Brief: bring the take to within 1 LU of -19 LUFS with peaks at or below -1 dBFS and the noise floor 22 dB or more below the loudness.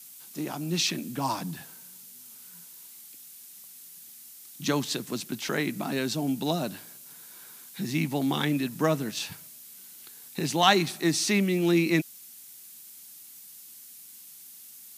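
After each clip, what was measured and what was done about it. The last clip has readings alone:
dropouts 3; longest dropout 2.0 ms; noise floor -48 dBFS; noise floor target -50 dBFS; loudness -27.5 LUFS; peak -6.0 dBFS; loudness target -19.0 LUFS
-> interpolate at 0.88/5.49/9.19, 2 ms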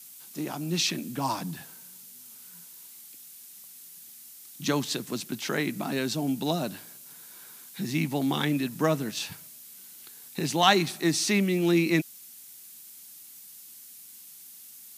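dropouts 0; noise floor -48 dBFS; noise floor target -50 dBFS
-> denoiser 6 dB, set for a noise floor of -48 dBFS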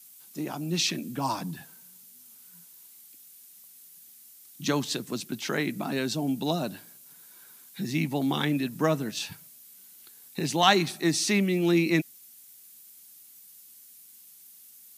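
noise floor -52 dBFS; loudness -27.5 LUFS; peak -6.0 dBFS; loudness target -19.0 LUFS
-> gain +8.5 dB; limiter -1 dBFS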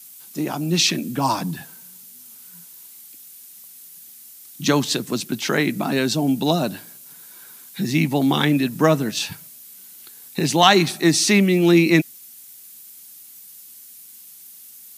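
loudness -19.5 LUFS; peak -1.0 dBFS; noise floor -44 dBFS

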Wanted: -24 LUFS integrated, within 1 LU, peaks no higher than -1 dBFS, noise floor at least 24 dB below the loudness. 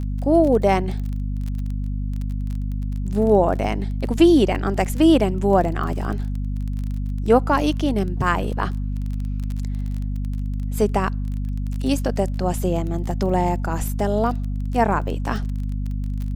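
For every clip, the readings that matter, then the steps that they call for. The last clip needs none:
ticks 23/s; hum 50 Hz; harmonics up to 250 Hz; hum level -22 dBFS; loudness -22.0 LUFS; peak -3.0 dBFS; loudness target -24.0 LUFS
-> de-click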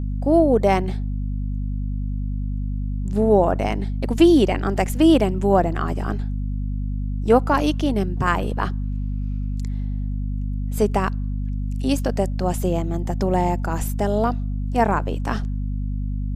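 ticks 0/s; hum 50 Hz; harmonics up to 250 Hz; hum level -22 dBFS
-> de-hum 50 Hz, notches 5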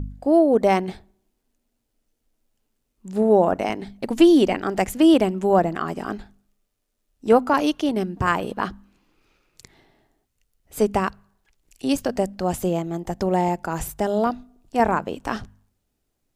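hum none; loudness -21.5 LUFS; peak -3.5 dBFS; loudness target -24.0 LUFS
-> gain -2.5 dB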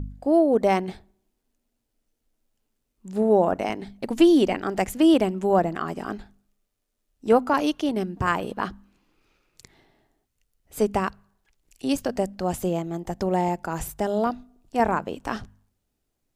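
loudness -24.0 LUFS; peak -6.0 dBFS; noise floor -78 dBFS

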